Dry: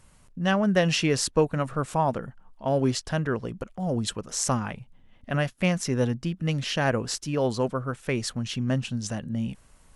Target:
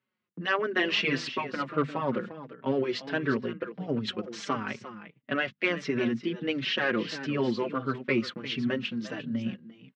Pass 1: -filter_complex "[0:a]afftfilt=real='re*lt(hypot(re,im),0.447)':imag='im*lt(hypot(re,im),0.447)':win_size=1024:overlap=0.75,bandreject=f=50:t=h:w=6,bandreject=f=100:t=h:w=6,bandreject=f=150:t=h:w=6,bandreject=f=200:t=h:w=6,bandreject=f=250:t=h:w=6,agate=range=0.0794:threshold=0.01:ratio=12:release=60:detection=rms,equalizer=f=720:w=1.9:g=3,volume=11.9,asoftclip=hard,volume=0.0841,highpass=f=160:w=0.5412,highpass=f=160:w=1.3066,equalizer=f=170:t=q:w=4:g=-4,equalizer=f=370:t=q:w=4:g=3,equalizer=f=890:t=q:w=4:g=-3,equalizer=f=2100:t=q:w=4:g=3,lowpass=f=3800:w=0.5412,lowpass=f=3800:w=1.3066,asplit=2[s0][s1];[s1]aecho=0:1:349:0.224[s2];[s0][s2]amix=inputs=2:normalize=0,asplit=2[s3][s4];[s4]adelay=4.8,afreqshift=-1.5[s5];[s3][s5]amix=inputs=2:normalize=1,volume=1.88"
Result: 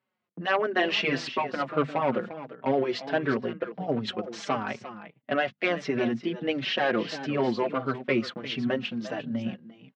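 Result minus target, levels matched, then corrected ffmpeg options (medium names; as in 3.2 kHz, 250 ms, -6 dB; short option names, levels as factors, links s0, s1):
1 kHz band +3.0 dB
-filter_complex "[0:a]afftfilt=real='re*lt(hypot(re,im),0.447)':imag='im*lt(hypot(re,im),0.447)':win_size=1024:overlap=0.75,bandreject=f=50:t=h:w=6,bandreject=f=100:t=h:w=6,bandreject=f=150:t=h:w=6,bandreject=f=200:t=h:w=6,bandreject=f=250:t=h:w=6,agate=range=0.0794:threshold=0.01:ratio=12:release=60:detection=rms,equalizer=f=720:w=1.9:g=-8,volume=11.9,asoftclip=hard,volume=0.0841,highpass=f=160:w=0.5412,highpass=f=160:w=1.3066,equalizer=f=170:t=q:w=4:g=-4,equalizer=f=370:t=q:w=4:g=3,equalizer=f=890:t=q:w=4:g=-3,equalizer=f=2100:t=q:w=4:g=3,lowpass=f=3800:w=0.5412,lowpass=f=3800:w=1.3066,asplit=2[s0][s1];[s1]aecho=0:1:349:0.224[s2];[s0][s2]amix=inputs=2:normalize=0,asplit=2[s3][s4];[s4]adelay=4.8,afreqshift=-1.5[s5];[s3][s5]amix=inputs=2:normalize=1,volume=1.88"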